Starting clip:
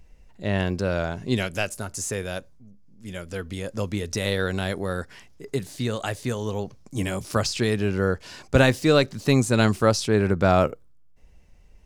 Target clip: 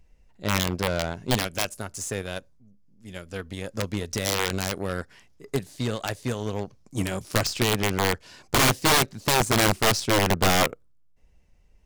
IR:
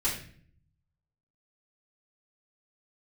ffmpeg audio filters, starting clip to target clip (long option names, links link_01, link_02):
-af "aeval=exprs='(mod(5.01*val(0)+1,2)-1)/5.01':channel_layout=same,aeval=exprs='0.211*(cos(1*acos(clip(val(0)/0.211,-1,1)))-cos(1*PI/2))+0.075*(cos(2*acos(clip(val(0)/0.211,-1,1)))-cos(2*PI/2))+0.0188*(cos(4*acos(clip(val(0)/0.211,-1,1)))-cos(4*PI/2))+0.0075*(cos(5*acos(clip(val(0)/0.211,-1,1)))-cos(5*PI/2))+0.0211*(cos(7*acos(clip(val(0)/0.211,-1,1)))-cos(7*PI/2))':channel_layout=same"